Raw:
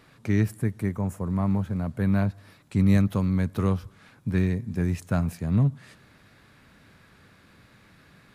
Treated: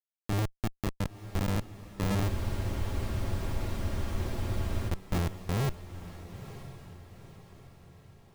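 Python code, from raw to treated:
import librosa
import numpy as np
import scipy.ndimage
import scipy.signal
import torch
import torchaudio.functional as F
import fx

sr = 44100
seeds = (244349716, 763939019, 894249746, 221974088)

p1 = fx.bin_expand(x, sr, power=2.0)
p2 = fx.sample_hold(p1, sr, seeds[0], rate_hz=1500.0, jitter_pct=0)
p3 = fx.schmitt(p2, sr, flips_db=-30.0)
p4 = p3 + fx.echo_diffused(p3, sr, ms=960, feedback_pct=47, wet_db=-13.0, dry=0)
p5 = fx.spec_freeze(p4, sr, seeds[1], at_s=2.31, hold_s=2.57)
y = p5 * librosa.db_to_amplitude(3.5)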